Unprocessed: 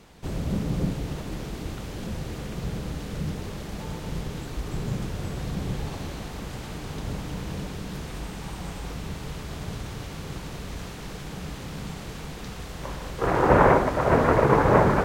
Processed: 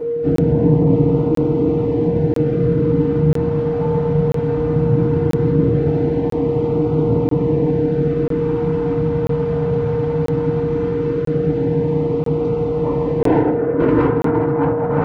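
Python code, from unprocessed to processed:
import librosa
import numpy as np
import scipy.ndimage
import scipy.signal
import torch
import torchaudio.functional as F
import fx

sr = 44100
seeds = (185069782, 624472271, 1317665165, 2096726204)

y = scipy.signal.sosfilt(scipy.signal.butter(2, 190.0, 'highpass', fs=sr, output='sos'), x)
y = fx.tilt_eq(y, sr, slope=-4.0)
y = fx.over_compress(y, sr, threshold_db=-20.0, ratio=-0.5)
y = 10.0 ** (-20.0 / 20.0) * np.tanh(y / 10.0 ** (-20.0 / 20.0))
y = fx.filter_lfo_notch(y, sr, shape='sine', hz=0.18, low_hz=330.0, high_hz=1700.0, q=1.8)
y = y + 10.0 ** (-29.0 / 20.0) * np.sin(2.0 * np.pi * 470.0 * np.arange(len(y)) / sr)
y = fx.spacing_loss(y, sr, db_at_10k=25)
y = y + 10.0 ** (-13.0 / 20.0) * np.pad(y, (int(161 * sr / 1000.0), 0))[:len(y)]
y = fx.rev_fdn(y, sr, rt60_s=0.31, lf_ratio=0.85, hf_ratio=0.7, size_ms=20.0, drr_db=-10.0)
y = fx.buffer_crackle(y, sr, first_s=0.36, period_s=0.99, block=1024, kind='zero')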